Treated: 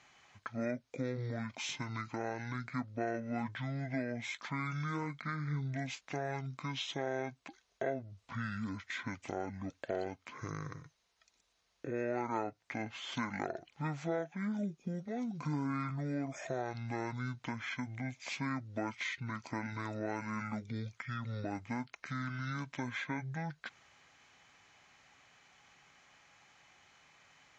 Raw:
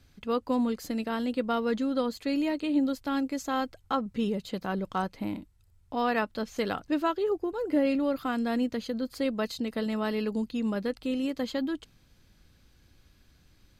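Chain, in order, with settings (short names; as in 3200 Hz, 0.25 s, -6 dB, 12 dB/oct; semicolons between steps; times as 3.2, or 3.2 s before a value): speed mistake 15 ips tape played at 7.5 ips; weighting filter A; compressor 2:1, threshold -44 dBFS, peak gain reduction 10.5 dB; tone controls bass +3 dB, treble +2 dB; gain +4.5 dB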